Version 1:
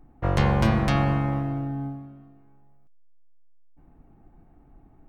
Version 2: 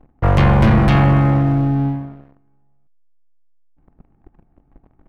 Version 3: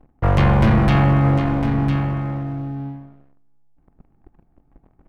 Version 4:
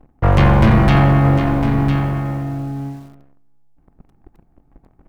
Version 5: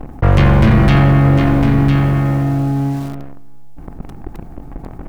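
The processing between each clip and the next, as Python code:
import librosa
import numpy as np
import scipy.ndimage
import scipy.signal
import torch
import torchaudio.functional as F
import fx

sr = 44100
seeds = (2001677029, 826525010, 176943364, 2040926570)

y1 = fx.leveller(x, sr, passes=3)
y1 = fx.bass_treble(y1, sr, bass_db=3, treble_db=-10)
y2 = y1 + 10.0 ** (-8.5 / 20.0) * np.pad(y1, (int(1004 * sr / 1000.0), 0))[:len(y1)]
y2 = y2 * 10.0 ** (-2.5 / 20.0)
y3 = fx.echo_crushed(y2, sr, ms=89, feedback_pct=55, bits=7, wet_db=-14.0)
y3 = y3 * 10.0 ** (3.5 / 20.0)
y4 = fx.dynamic_eq(y3, sr, hz=870.0, q=1.5, threshold_db=-33.0, ratio=4.0, max_db=-5)
y4 = fx.env_flatten(y4, sr, amount_pct=50)
y4 = y4 * 10.0 ** (1.0 / 20.0)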